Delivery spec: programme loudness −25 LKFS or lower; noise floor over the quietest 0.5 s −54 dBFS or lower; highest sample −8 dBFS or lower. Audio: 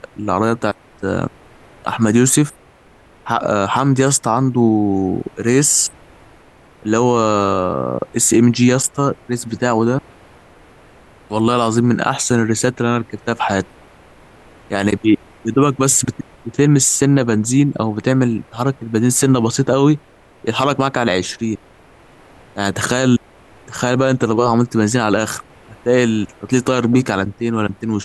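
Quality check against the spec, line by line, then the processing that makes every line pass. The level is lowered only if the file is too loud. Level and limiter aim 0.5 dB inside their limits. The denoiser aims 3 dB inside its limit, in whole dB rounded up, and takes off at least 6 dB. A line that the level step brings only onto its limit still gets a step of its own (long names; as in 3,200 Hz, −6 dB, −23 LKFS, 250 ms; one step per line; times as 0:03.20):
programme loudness −16.5 LKFS: out of spec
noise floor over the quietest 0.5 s −47 dBFS: out of spec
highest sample −3.0 dBFS: out of spec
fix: level −9 dB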